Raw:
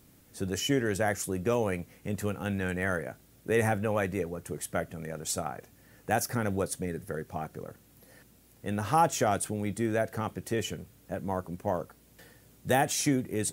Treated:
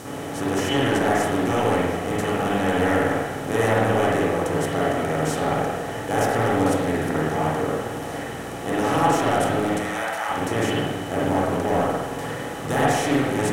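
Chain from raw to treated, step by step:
compressor on every frequency bin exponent 0.4
0:09.76–0:10.29: high-pass filter 720 Hz 24 dB per octave
soft clipping −10 dBFS, distortion −21 dB
spring reverb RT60 1.2 s, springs 45/52 ms, chirp 60 ms, DRR −7 dB
highs frequency-modulated by the lows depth 0.16 ms
level −5 dB

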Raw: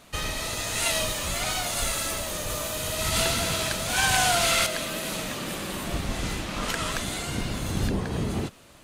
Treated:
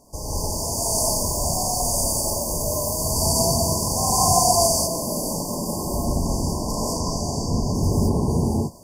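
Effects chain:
0:06.80–0:07.75: high shelf with overshoot 7,300 Hz −8 dB, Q 1.5
surface crackle 30 per second −50 dBFS
linear-phase brick-wall band-stop 1,100–4,500 Hz
reverb whose tail is shaped and stops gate 230 ms rising, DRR −6.5 dB

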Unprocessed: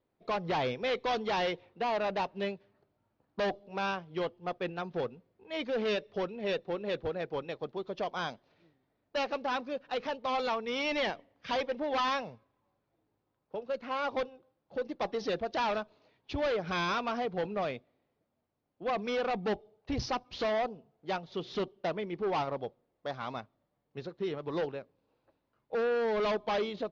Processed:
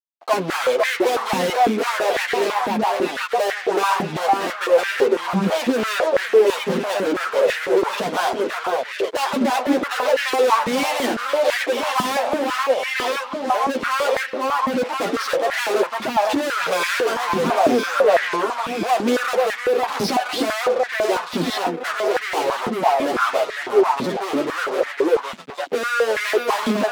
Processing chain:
delay that swaps between a low-pass and a high-pass 505 ms, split 1,300 Hz, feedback 63%, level −5 dB
fuzz pedal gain 46 dB, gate −55 dBFS
multi-voice chorus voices 4, 0.62 Hz, delay 10 ms, depth 2.5 ms
high-pass on a step sequencer 6 Hz 210–1,800 Hz
level −6.5 dB

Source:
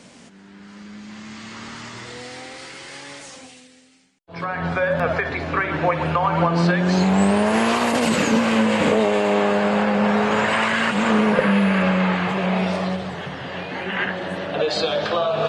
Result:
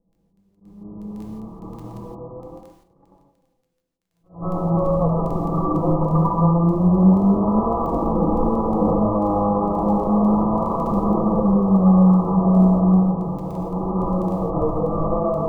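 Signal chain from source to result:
lower of the sound and its delayed copy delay 6 ms
on a send: backwards echo 192 ms −13 dB
on the sum: low-pass that shuts in the quiet parts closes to 490 Hz, open at −17.5 dBFS
linear-phase brick-wall low-pass 1,300 Hz
surface crackle 10 per second −31 dBFS
downward compressor 3 to 1, threshold −24 dBFS, peak gain reduction 8 dB
dynamic equaliser 310 Hz, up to +3 dB, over −36 dBFS, Q 1.1
noise gate −43 dBFS, range −23 dB
low-shelf EQ 160 Hz +9.5 dB
reverb whose tail is shaped and stops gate 190 ms flat, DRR −1 dB
level that may rise only so fast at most 180 dB per second

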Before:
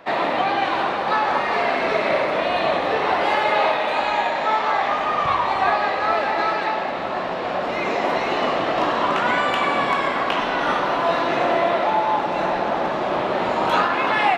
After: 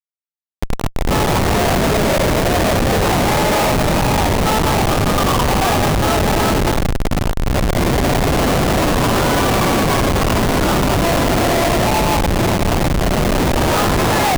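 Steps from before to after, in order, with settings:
fade in at the beginning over 1.39 s
comparator with hysteresis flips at −18.5 dBFS
level +6.5 dB

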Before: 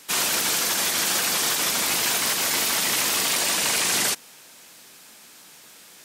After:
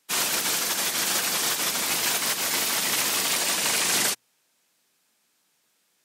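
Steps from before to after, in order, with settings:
high-pass filter 62 Hz
mains-hum notches 60/120 Hz
expander for the loud parts 2.5 to 1, over −36 dBFS

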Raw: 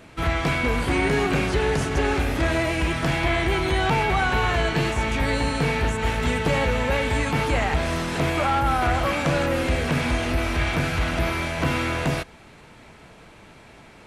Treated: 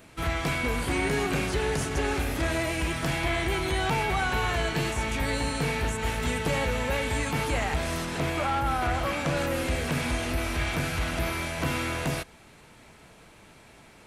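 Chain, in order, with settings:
high-shelf EQ 7,200 Hz +12 dB, from 0:08.05 +4.5 dB, from 0:09.37 +11.5 dB
level −5.5 dB

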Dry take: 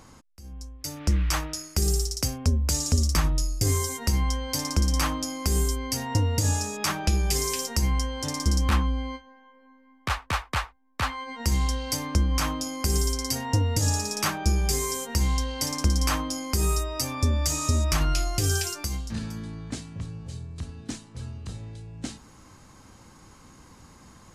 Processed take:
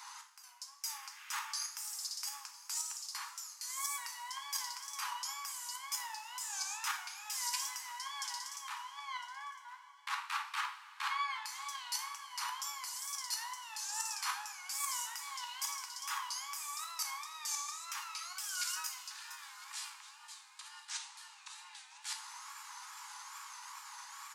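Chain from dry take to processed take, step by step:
tape wow and flutter 140 cents
output level in coarse steps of 14 dB
brickwall limiter −24 dBFS, peak gain reduction 8.5 dB
reversed playback
downward compressor 6 to 1, threshold −45 dBFS, peak gain reduction 16 dB
reversed playback
Butterworth high-pass 830 Hz 96 dB per octave
on a send: single-tap delay 1,006 ms −19.5 dB
on the sum: coupled-rooms reverb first 0.47 s, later 4.1 s, from −18 dB, DRR 3 dB
level +10 dB

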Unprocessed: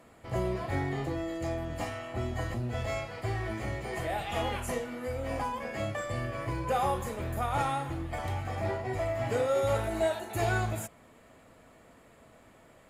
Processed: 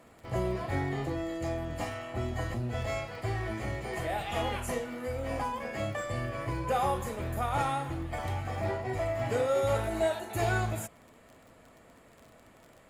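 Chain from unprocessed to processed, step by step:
surface crackle 32 per second −44 dBFS

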